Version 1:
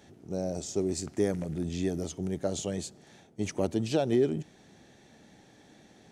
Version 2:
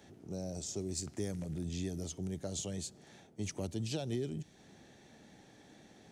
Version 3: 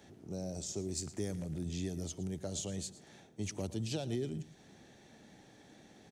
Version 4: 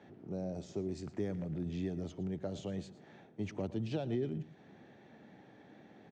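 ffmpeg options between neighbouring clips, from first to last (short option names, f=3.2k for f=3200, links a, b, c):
-filter_complex "[0:a]acrossover=split=160|3000[a][b][c];[b]acompressor=threshold=-45dB:ratio=2[d];[a][d][c]amix=inputs=3:normalize=0,volume=-2dB"
-af "aecho=1:1:113:0.15"
-af "highpass=110,lowpass=2.2k,volume=2dB"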